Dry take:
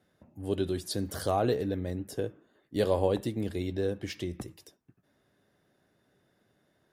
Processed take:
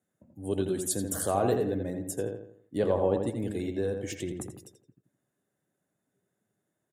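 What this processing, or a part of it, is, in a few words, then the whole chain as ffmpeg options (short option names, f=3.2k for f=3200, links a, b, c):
budget condenser microphone: -filter_complex "[0:a]asplit=3[a][b][c];[a]afade=t=out:st=2.77:d=0.02[d];[b]aemphasis=mode=reproduction:type=75kf,afade=t=in:st=2.77:d=0.02,afade=t=out:st=3.26:d=0.02[e];[c]afade=t=in:st=3.26:d=0.02[f];[d][e][f]amix=inputs=3:normalize=0,afftdn=nr=13:nf=-55,highpass=97,highshelf=f=6k:t=q:w=3:g=7.5,asplit=2[g][h];[h]adelay=84,lowpass=f=3k:p=1,volume=-5dB,asplit=2[i][j];[j]adelay=84,lowpass=f=3k:p=1,volume=0.42,asplit=2[k][l];[l]adelay=84,lowpass=f=3k:p=1,volume=0.42,asplit=2[m][n];[n]adelay=84,lowpass=f=3k:p=1,volume=0.42,asplit=2[o][p];[p]adelay=84,lowpass=f=3k:p=1,volume=0.42[q];[g][i][k][m][o][q]amix=inputs=6:normalize=0"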